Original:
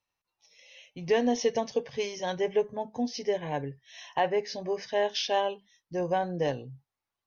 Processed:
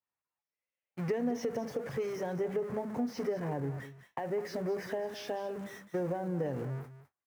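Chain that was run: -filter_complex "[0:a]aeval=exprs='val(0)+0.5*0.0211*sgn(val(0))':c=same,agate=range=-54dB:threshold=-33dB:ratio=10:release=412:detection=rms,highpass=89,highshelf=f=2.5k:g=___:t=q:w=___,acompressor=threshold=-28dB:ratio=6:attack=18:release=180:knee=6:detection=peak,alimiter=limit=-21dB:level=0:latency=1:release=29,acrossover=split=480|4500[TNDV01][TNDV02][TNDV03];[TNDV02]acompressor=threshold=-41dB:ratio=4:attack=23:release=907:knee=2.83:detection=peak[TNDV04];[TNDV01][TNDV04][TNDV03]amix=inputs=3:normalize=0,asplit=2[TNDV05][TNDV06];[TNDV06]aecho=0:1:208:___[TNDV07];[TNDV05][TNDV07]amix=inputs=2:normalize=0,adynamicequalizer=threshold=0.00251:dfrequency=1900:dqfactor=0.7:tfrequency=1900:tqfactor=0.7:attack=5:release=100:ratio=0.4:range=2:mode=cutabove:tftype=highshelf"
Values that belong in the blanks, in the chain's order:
-10, 1.5, 0.2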